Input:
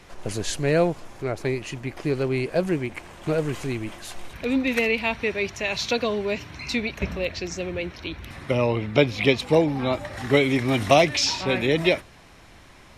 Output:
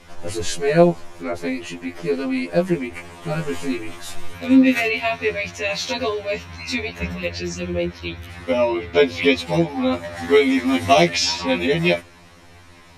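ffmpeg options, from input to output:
-filter_complex "[0:a]asettb=1/sr,asplit=3[a][b][c];[a]atrim=end=2.944[d];[b]atrim=start=2.94:end=5.25,asetpts=PTS-STARTPTS,afade=t=in:d=0.004:c=qsin,afade=t=out:st=2.306:d=0.004:c=qsin,asplit=2[e][f];[f]adelay=19,volume=-5.5dB[g];[e][g]amix=inputs=2:normalize=0,atrim=end_sample=101871[h];[c]atrim=start=5.246[i];[d][h]acrossfade=d=0.004:c1=hsin:c2=qsin[j];[j][i]acrossfade=d=0.004:c1=qsin:c2=hsin,afftfilt=real='re*2*eq(mod(b,4),0)':imag='im*2*eq(mod(b,4),0)':win_size=2048:overlap=0.75,volume=5dB"

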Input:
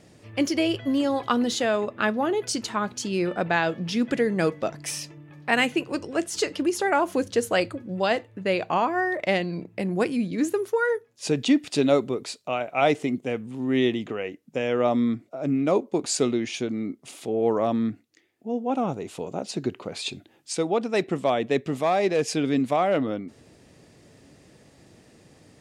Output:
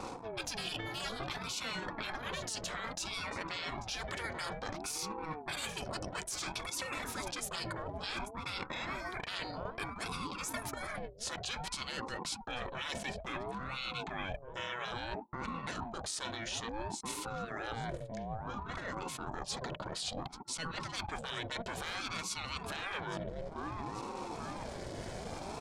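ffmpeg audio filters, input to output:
-af "asuperstop=centerf=2400:order=20:qfactor=4.3,aecho=1:1:837|1674:0.0708|0.0227,afftfilt=real='re*lt(hypot(re,im),0.1)':imag='im*lt(hypot(re,im),0.1)':win_size=1024:overlap=0.75,aeval=exprs='0.15*(cos(1*acos(clip(val(0)/0.15,-1,1)))-cos(1*PI/2))+0.000944*(cos(6*acos(clip(val(0)/0.15,-1,1)))-cos(6*PI/2))':c=same,alimiter=level_in=3.5dB:limit=-24dB:level=0:latency=1:release=106,volume=-3.5dB,areverse,acompressor=threshold=-51dB:ratio=8,areverse,aecho=1:1:2.5:0.31,anlmdn=0.0000398,aeval=exprs='val(0)*sin(2*PI*440*n/s+440*0.5/0.58*sin(2*PI*0.58*n/s))':c=same,volume=16.5dB"

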